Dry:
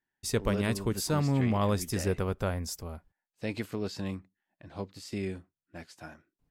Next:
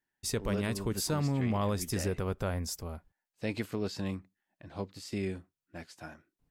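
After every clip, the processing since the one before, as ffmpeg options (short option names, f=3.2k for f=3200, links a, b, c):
-af "alimiter=limit=-21dB:level=0:latency=1:release=90"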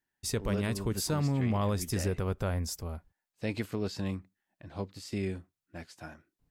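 -af "equalizer=f=73:t=o:w=1.8:g=3.5"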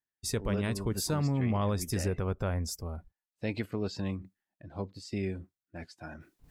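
-af "afftdn=nr=13:nf=-52,areverse,acompressor=mode=upward:threshold=-39dB:ratio=2.5,areverse"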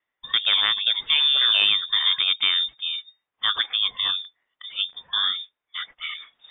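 -filter_complex "[0:a]crystalizer=i=8:c=0,acrossover=split=2600[a][b];[b]acompressor=threshold=-45dB:ratio=4:attack=1:release=60[c];[a][c]amix=inputs=2:normalize=0,lowpass=f=3.1k:t=q:w=0.5098,lowpass=f=3.1k:t=q:w=0.6013,lowpass=f=3.1k:t=q:w=0.9,lowpass=f=3.1k:t=q:w=2.563,afreqshift=-3700,volume=8.5dB"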